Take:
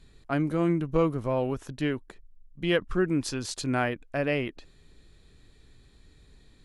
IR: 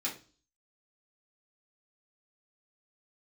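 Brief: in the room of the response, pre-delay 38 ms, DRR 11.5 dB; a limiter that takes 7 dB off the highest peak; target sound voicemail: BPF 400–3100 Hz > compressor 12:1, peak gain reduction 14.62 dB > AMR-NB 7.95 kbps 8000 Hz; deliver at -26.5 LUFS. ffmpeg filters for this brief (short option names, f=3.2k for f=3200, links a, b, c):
-filter_complex "[0:a]alimiter=limit=-19.5dB:level=0:latency=1,asplit=2[a][b];[1:a]atrim=start_sample=2205,adelay=38[c];[b][c]afir=irnorm=-1:irlink=0,volume=-15dB[d];[a][d]amix=inputs=2:normalize=0,highpass=400,lowpass=3.1k,acompressor=threshold=-40dB:ratio=12,volume=19.5dB" -ar 8000 -c:a libopencore_amrnb -b:a 7950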